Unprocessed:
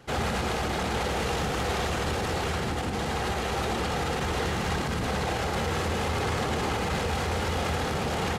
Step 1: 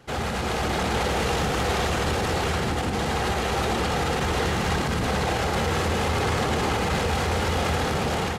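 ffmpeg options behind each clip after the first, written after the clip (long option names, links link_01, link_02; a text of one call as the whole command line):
ffmpeg -i in.wav -af "dynaudnorm=framelen=340:gausssize=3:maxgain=4dB" out.wav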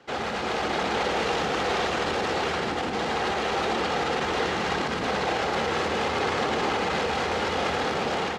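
ffmpeg -i in.wav -filter_complex "[0:a]acrossover=split=210 6400:gain=0.178 1 0.112[link_01][link_02][link_03];[link_01][link_02][link_03]amix=inputs=3:normalize=0" out.wav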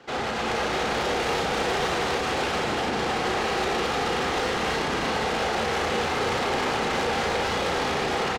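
ffmpeg -i in.wav -filter_complex "[0:a]asoftclip=type=tanh:threshold=-28.5dB,asplit=2[link_01][link_02];[link_02]adelay=35,volume=-5dB[link_03];[link_01][link_03]amix=inputs=2:normalize=0,aecho=1:1:307:0.596,volume=3.5dB" out.wav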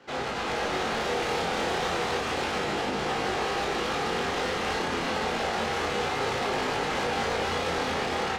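ffmpeg -i in.wav -af "flanger=delay=19.5:depth=4:speed=0.31" out.wav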